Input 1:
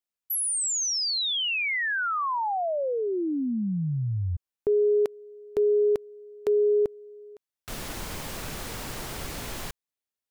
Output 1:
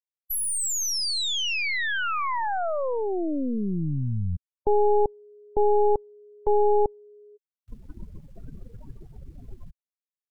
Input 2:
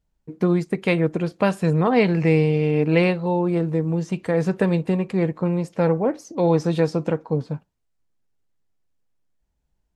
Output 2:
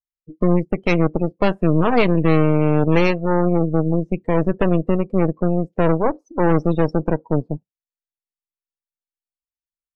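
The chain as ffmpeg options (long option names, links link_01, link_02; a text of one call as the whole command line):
ffmpeg -i in.wav -af "aeval=exprs='0.531*(cos(1*acos(clip(val(0)/0.531,-1,1)))-cos(1*PI/2))+0.075*(cos(4*acos(clip(val(0)/0.531,-1,1)))-cos(4*PI/2))+0.075*(cos(8*acos(clip(val(0)/0.531,-1,1)))-cos(8*PI/2))':channel_layout=same,afftdn=noise_reduction=35:noise_floor=-27" out.wav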